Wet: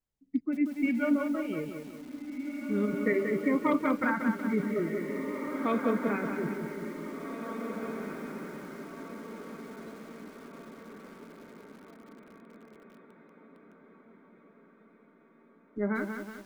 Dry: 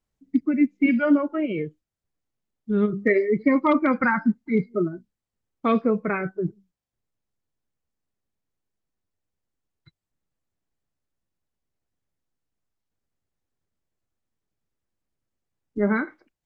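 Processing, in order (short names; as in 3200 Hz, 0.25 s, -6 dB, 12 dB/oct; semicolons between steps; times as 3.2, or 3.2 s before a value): diffused feedback echo 1.955 s, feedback 51%, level -7 dB; lo-fi delay 0.185 s, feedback 55%, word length 7-bit, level -6 dB; gain -8.5 dB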